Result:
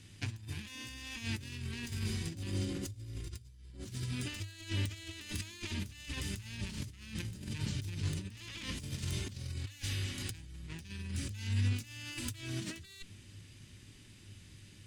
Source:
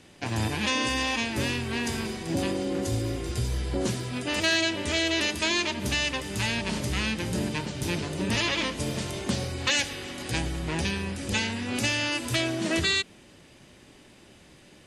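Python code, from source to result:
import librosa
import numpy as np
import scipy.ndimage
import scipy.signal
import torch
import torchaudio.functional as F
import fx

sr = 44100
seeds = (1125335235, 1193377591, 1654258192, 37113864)

y = fx.tracing_dist(x, sr, depth_ms=0.049)
y = fx.tone_stack(y, sr, knobs='6-0-2')
y = fx.over_compress(y, sr, threshold_db=-50.0, ratio=-0.5)
y = fx.peak_eq(y, sr, hz=100.0, db=14.5, octaves=0.22)
y = y * librosa.db_to_amplitude(8.0)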